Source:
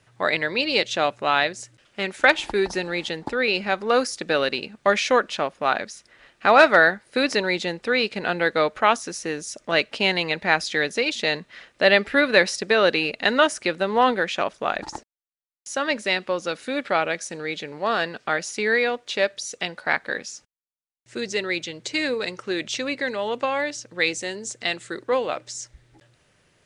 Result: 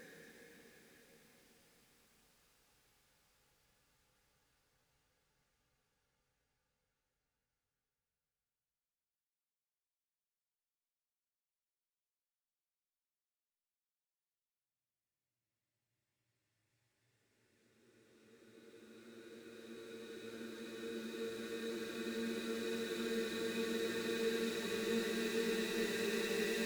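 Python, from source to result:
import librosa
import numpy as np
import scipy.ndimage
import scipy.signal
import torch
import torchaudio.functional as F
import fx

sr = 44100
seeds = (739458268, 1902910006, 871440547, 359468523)

y = fx.dead_time(x, sr, dead_ms=0.1)
y = fx.doppler_pass(y, sr, speed_mps=13, closest_m=14.0, pass_at_s=9.25)
y = fx.paulstretch(y, sr, seeds[0], factor=28.0, window_s=0.5, from_s=20.39)
y = y * librosa.db_to_amplitude(12.5)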